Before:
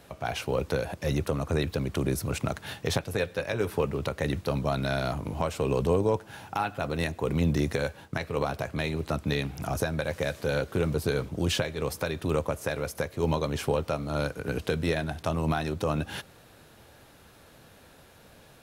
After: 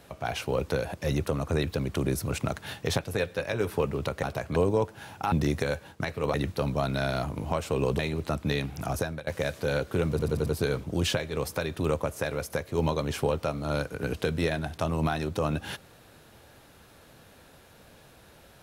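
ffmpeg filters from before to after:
-filter_complex "[0:a]asplit=11[a][b][c][d][e][f][g][h][i][j][k];[a]atrim=end=4.232[l];[b]atrim=start=8.468:end=8.802[m];[c]atrim=start=5.878:end=6.642[n];[d]atrim=start=7.448:end=8.472[o];[e]atrim=start=4.228:end=5.882[p];[f]atrim=start=8.798:end=10.08,asetpts=PTS-STARTPTS,afade=t=out:st=0.892:d=0.39:c=qsin:silence=0.0944061[q];[g]atrim=start=10.08:end=11.002,asetpts=PTS-STARTPTS,afade=t=in:d=0.004:c=hsin:silence=0.0944061[r];[h]atrim=start=10.908:end=11.002[s];[i]atrim=start=10.908:end=11.002[t];[j]atrim=start=10.908:end=11.002[u];[k]atrim=start=10.908[v];[l][m]acrossfade=d=0.004:c1=hsin:c2=hsin[w];[w][n]acrossfade=d=0.004:c1=hsin:c2=hsin[x];[x][o]acrossfade=d=0.004:c1=hsin:c2=hsin[y];[y][p]acrossfade=d=0.004:c1=hsin:c2=hsin[z];[q][r]concat=n=2:v=0:a=1[aa];[z][aa]acrossfade=d=0.004:c1=hsin:c2=hsin[ab];[ab][s]acrossfade=d=0.004:c1=hsin:c2=hsin[ac];[ac][t]acrossfade=d=0.004:c1=hsin:c2=hsin[ad];[ad][u]acrossfade=d=0.004:c1=hsin:c2=hsin[ae];[ae][v]acrossfade=d=0.004:c1=hsin:c2=hsin"

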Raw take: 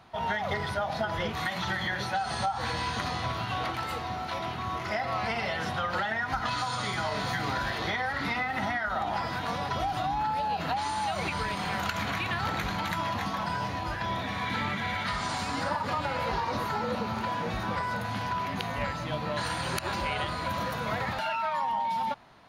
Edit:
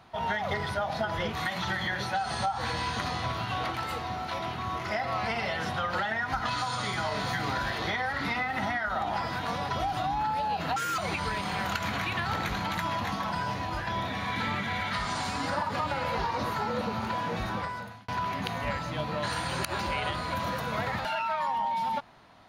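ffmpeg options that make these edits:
-filter_complex "[0:a]asplit=4[a][b][c][d];[a]atrim=end=10.764[e];[b]atrim=start=10.76:end=11.12,asetpts=PTS-STARTPTS,asetrate=71442,aresample=44100[f];[c]atrim=start=11.116:end=18.22,asetpts=PTS-STARTPTS,afade=t=out:st=6.504:d=0.6[g];[d]atrim=start=18.22,asetpts=PTS-STARTPTS,afade=t=in:d=0.004:c=hsin[h];[e][f]acrossfade=d=0.004:c1=hsin:c2=hsin[i];[g][h]concat=n=2:v=0:a=1[j];[i][j]acrossfade=d=0.004:c1=hsin:c2=hsin"

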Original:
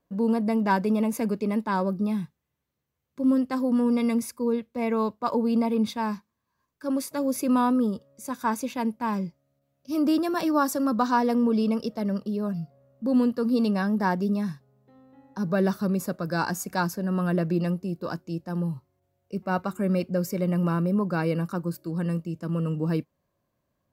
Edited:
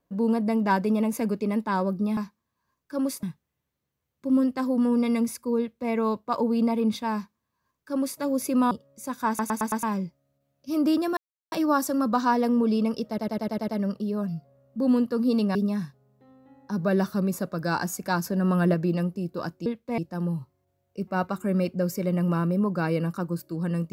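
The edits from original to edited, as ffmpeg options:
-filter_complex "[0:a]asplit=21[a][b][c][d][e][f][g][h][i][j][k][l][m][n][o][p][q][r][s][t][u];[a]atrim=end=2.172[v];[b]atrim=start=6.078:end=7.142[w];[c]atrim=start=2.168:end=7.652[x];[d]atrim=start=7.918:end=8.602[y];[e]atrim=start=8.488:end=8.602[z];[f]atrim=start=8.488:end=8.602[aa];[g]atrim=start=8.488:end=8.602[ab];[h]atrim=start=8.488:end=8.602[ac];[i]atrim=start=9.038:end=10.38,asetpts=PTS-STARTPTS,afade=t=out:st=1.338:d=0.004:c=hsin,apad=pad_dur=0.35[ad];[j]atrim=start=10.38:end=12.042,asetpts=PTS-STARTPTS,afade=t=in:d=0.004:c=hsin[ae];[k]atrim=start=11.938:end=12.042[af];[l]atrim=start=11.938:end=12.042[ag];[m]atrim=start=11.938:end=12.042[ah];[n]atrim=start=11.938:end=12.042[ai];[o]atrim=start=11.938:end=12.042[aj];[p]atrim=start=11.938:end=13.812[ak];[q]atrim=start=14.218:end=16.912[al];[r]atrim=start=16.908:end=17.412,asetpts=PTS-STARTPTS,volume=3dB[am];[s]atrim=start=17.408:end=18.332[an];[t]atrim=start=4.528:end=4.852[ao];[u]atrim=start=18.328[ap];[v][w]acrossfade=d=0.004:c1=hsin:c2=hsin[aq];[aq][x]acrossfade=d=0.004:c1=hsin:c2=hsin[ar];[ar][y]acrossfade=d=0.004:c1=hsin:c2=hsin[as];[as][z]acrossfade=d=0.004:c1=hsin:c2=hsin[at];[at][aa]acrossfade=d=0.004:c1=hsin:c2=hsin[au];[au][ab]acrossfade=d=0.004:c1=hsin:c2=hsin[av];[av][ac]acrossfade=d=0.004:c1=hsin:c2=hsin[aw];[ad][ae]concat=n=2:v=0:a=1[ax];[aw][ax]acrossfade=d=0.004:c1=hsin:c2=hsin[ay];[ay][af]acrossfade=d=0.004:c1=hsin:c2=hsin[az];[az][ag]acrossfade=d=0.004:c1=hsin:c2=hsin[ba];[ba][ah]acrossfade=d=0.004:c1=hsin:c2=hsin[bb];[bb][ai]acrossfade=d=0.004:c1=hsin:c2=hsin[bc];[bc][aj]acrossfade=d=0.004:c1=hsin:c2=hsin[bd];[bd][ak]acrossfade=d=0.004:c1=hsin:c2=hsin[be];[be][al]acrossfade=d=0.004:c1=hsin:c2=hsin[bf];[bf][am]acrossfade=d=0.004:c1=hsin:c2=hsin[bg];[bg][an]acrossfade=d=0.004:c1=hsin:c2=hsin[bh];[bh][ao]acrossfade=d=0.004:c1=hsin:c2=hsin[bi];[bi][ap]acrossfade=d=0.004:c1=hsin:c2=hsin"

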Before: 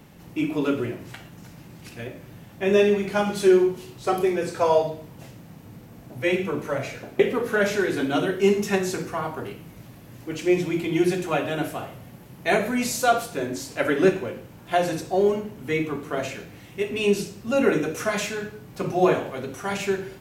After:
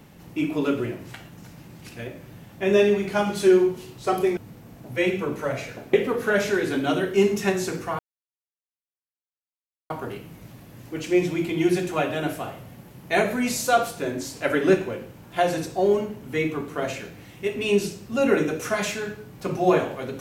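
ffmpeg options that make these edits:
-filter_complex "[0:a]asplit=3[a][b][c];[a]atrim=end=4.372[d];[b]atrim=start=5.628:end=9.25,asetpts=PTS-STARTPTS,afade=t=out:st=3.618:d=0.004:c=hsin,apad=pad_dur=1.91[e];[c]atrim=start=9.25,asetpts=PTS-STARTPTS,afade=t=in:d=0.004:c=hsin[f];[e][f]concat=n=2:v=0:a=1[g];[d][g]acrossfade=d=0.004:c1=hsin:c2=hsin"

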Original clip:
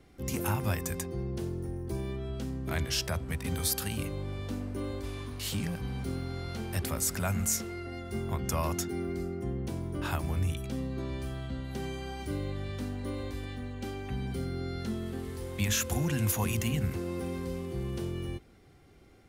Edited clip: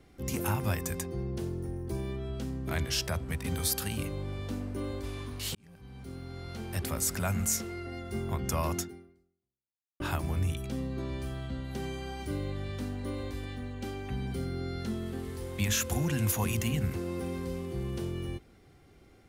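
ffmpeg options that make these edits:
-filter_complex "[0:a]asplit=3[a][b][c];[a]atrim=end=5.55,asetpts=PTS-STARTPTS,afade=t=out:st=5.546:d=0.004:c=hsin[d];[b]atrim=start=5.55:end=10,asetpts=PTS-STARTPTS,afade=t=in:d=1.44,afade=t=out:st=3.24:d=1.21:c=exp[e];[c]atrim=start=10,asetpts=PTS-STARTPTS,afade=t=in:d=0.004:c=hsin[f];[d][e][f]concat=n=3:v=0:a=1"

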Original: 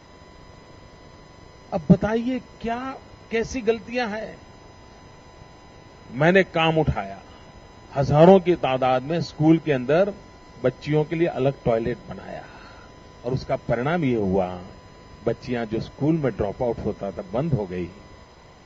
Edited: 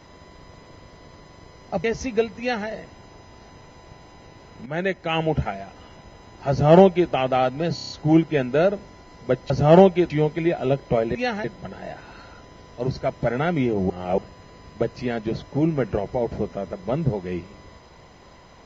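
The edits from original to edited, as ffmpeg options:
-filter_complex "[0:a]asplit=14[a][b][c][d][e][f][g][h][i][j][k][l][m][n];[a]atrim=end=1.842[o];[b]atrim=start=3.338:end=6.16,asetpts=PTS-STARTPTS,afade=t=out:st=2.818:d=0.004:c=hsin:silence=0.237137[p];[c]atrim=start=6.16:end=9.282,asetpts=PTS-STARTPTS,afade=t=in:d=0.9:silence=0.237137[q];[d]atrim=start=9.248:end=9.282[r];[e]atrim=start=9.248:end=9.282[s];[f]atrim=start=9.248:end=9.282[t];[g]atrim=start=9.248:end=9.282[u];[h]atrim=start=9.248:end=10.852[v];[i]atrim=start=7.998:end=8.602[w];[j]atrim=start=10.848:end=11.902[x];[k]atrim=start=3.888:end=4.182[y];[l]atrim=start=11.898:end=14.362[z];[m]atrim=start=14.358:end=14.642,asetpts=PTS-STARTPTS,areverse[aa];[n]atrim=start=14.638[ab];[p][q]concat=n=2:v=0:a=1[ac];[o][ac]acrossfade=d=0.004:c1=hsin:c2=hsin[ad];[ad][r]acrossfade=d=0.004:c1=hsin:c2=hsin[ae];[ae][s]acrossfade=d=0.004:c1=hsin:c2=hsin[af];[af][t]acrossfade=d=0.004:c1=hsin:c2=hsin[ag];[ag][u]acrossfade=d=0.004:c1=hsin:c2=hsin[ah];[ah][v]acrossfade=d=0.004:c1=hsin:c2=hsin[ai];[ai][w]acrossfade=d=0.004:c1=hsin:c2=hsin[aj];[aj][x]acrossfade=d=0.004:c1=hsin:c2=hsin[ak];[ak][y]acrossfade=d=0.004:c1=hsin:c2=hsin[al];[al][z]acrossfade=d=0.004:c1=hsin:c2=hsin[am];[am][aa]acrossfade=d=0.004:c1=hsin:c2=hsin[an];[an][ab]acrossfade=d=0.004:c1=hsin:c2=hsin"

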